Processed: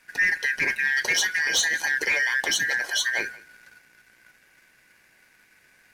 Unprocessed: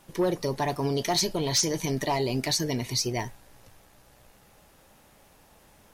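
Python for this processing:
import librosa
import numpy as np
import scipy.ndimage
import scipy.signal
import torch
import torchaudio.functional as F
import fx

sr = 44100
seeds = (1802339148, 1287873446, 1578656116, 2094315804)

p1 = fx.band_shuffle(x, sr, order='2143')
p2 = fx.high_shelf(p1, sr, hz=11000.0, db=-7.0)
p3 = fx.leveller(p2, sr, passes=1)
y = p3 + fx.echo_single(p3, sr, ms=177, db=-22.0, dry=0)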